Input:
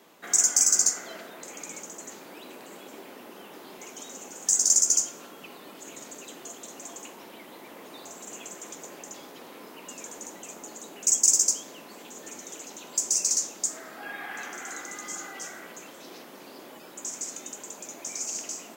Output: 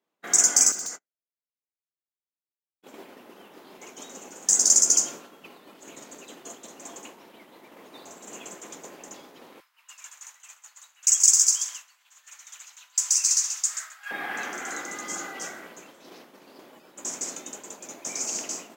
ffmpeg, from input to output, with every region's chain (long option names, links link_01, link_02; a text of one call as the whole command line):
ffmpeg -i in.wav -filter_complex "[0:a]asettb=1/sr,asplit=3[link_01][link_02][link_03];[link_01]atrim=end=0.724[link_04];[link_02]atrim=start=0.72:end=2.83,asetpts=PTS-STARTPTS,afade=type=in:duration=0.004:curve=qsin,afade=type=out:start_time=2.106:duration=0.004:curve=qsin,agate=range=-41dB:threshold=-34dB:ratio=16:release=100:detection=peak,acompressor=threshold=-30dB:ratio=4:attack=3.2:release=140:knee=1:detection=peak,volume=30.5dB,asoftclip=hard,volume=-30.5dB[link_05];[link_03]atrim=start=2.826[link_06];[link_04][link_05]acrossfade=duration=0.004:curve1=hsin:curve2=qsin[link_07];[link_07][link_06]acrossfade=duration=0.004:curve1=qsin:curve2=hsin,asettb=1/sr,asplit=3[link_08][link_09][link_10];[link_08]atrim=end=9.604[link_11];[link_09]atrim=start=9.6:end=14.11,asetpts=PTS-STARTPTS,afade=type=in:duration=0.004:curve=qsin,afade=type=out:start_time=4.506:duration=0.004:curve=qsin,highpass=frequency=1200:width=0.5412,highpass=frequency=1200:width=1.3066,aecho=1:1:132|264|396|528:0.376|0.113|0.0338|0.0101,atrim=end_sample=198891[link_12];[link_10]atrim=start=14.106[link_13];[link_11][link_12]acrossfade=duration=0.004:curve1=hsin:curve2=qsin[link_14];[link_14][link_13]acrossfade=duration=0.004:curve1=qsin:curve2=hsin,highshelf=frequency=6400:gain=-5.5,agate=range=-33dB:threshold=-38dB:ratio=3:detection=peak,volume=5.5dB" out.wav